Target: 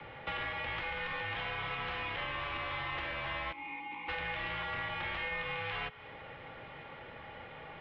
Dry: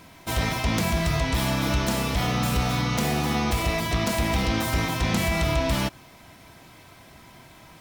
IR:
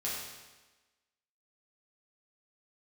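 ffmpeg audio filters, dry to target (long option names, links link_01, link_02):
-filter_complex "[0:a]bandreject=frequency=360:width=12,highpass=frequency=260:width_type=q:width=0.5412,highpass=frequency=260:width_type=q:width=1.307,lowpass=frequency=3200:width_type=q:width=0.5176,lowpass=frequency=3200:width_type=q:width=0.7071,lowpass=frequency=3200:width_type=q:width=1.932,afreqshift=-160,acrossover=split=810|990[link_01][link_02][link_03];[link_01]acompressor=threshold=-40dB:ratio=6[link_04];[link_04][link_02][link_03]amix=inputs=3:normalize=0,asplit=3[link_05][link_06][link_07];[link_05]afade=type=out:start_time=3.51:duration=0.02[link_08];[link_06]asplit=3[link_09][link_10][link_11];[link_09]bandpass=frequency=300:width_type=q:width=8,volume=0dB[link_12];[link_10]bandpass=frequency=870:width_type=q:width=8,volume=-6dB[link_13];[link_11]bandpass=frequency=2240:width_type=q:width=8,volume=-9dB[link_14];[link_12][link_13][link_14]amix=inputs=3:normalize=0,afade=type=in:start_time=3.51:duration=0.02,afade=type=out:start_time=4.08:duration=0.02[link_15];[link_07]afade=type=in:start_time=4.08:duration=0.02[link_16];[link_08][link_15][link_16]amix=inputs=3:normalize=0,asplit=2[link_17][link_18];[1:a]atrim=start_sample=2205[link_19];[link_18][link_19]afir=irnorm=-1:irlink=0,volume=-23.5dB[link_20];[link_17][link_20]amix=inputs=2:normalize=0,acrossover=split=130|410|850[link_21][link_22][link_23][link_24];[link_21]acompressor=threshold=-51dB:ratio=4[link_25];[link_22]acompressor=threshold=-58dB:ratio=4[link_26];[link_23]acompressor=threshold=-53dB:ratio=4[link_27];[link_24]acompressor=threshold=-41dB:ratio=4[link_28];[link_25][link_26][link_27][link_28]amix=inputs=4:normalize=0,volume=3dB"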